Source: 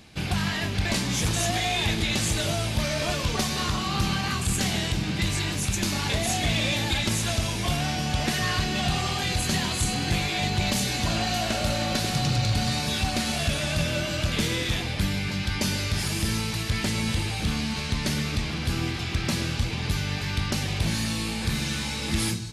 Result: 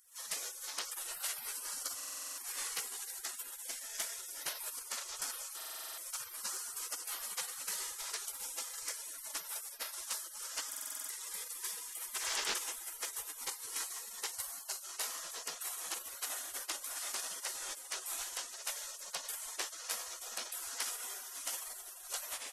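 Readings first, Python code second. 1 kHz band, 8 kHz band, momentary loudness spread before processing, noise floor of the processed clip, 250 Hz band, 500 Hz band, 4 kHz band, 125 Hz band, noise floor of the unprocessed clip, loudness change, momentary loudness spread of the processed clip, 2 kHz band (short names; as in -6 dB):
-17.0 dB, -5.5 dB, 4 LU, -50 dBFS, -37.5 dB, -22.0 dB, -15.5 dB, under -40 dB, -31 dBFS, -13.5 dB, 3 LU, -17.0 dB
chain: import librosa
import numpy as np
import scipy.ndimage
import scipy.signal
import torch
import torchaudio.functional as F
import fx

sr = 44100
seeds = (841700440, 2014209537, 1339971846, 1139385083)

y = fx.recorder_agc(x, sr, target_db=-25.0, rise_db_per_s=62.0, max_gain_db=30)
y = fx.spec_gate(y, sr, threshold_db=-30, keep='weak')
y = fx.buffer_glitch(y, sr, at_s=(1.96, 5.56, 10.68), block=2048, repeats=8)
y = y * librosa.db_to_amplitude(4.0)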